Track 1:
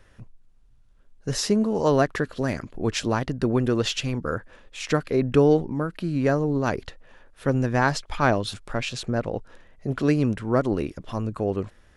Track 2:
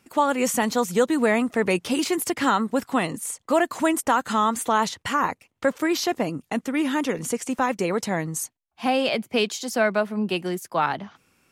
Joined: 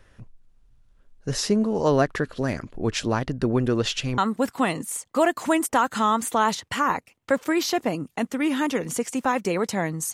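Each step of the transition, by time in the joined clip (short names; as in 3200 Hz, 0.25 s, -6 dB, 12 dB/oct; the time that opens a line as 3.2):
track 1
4.18 switch to track 2 from 2.52 s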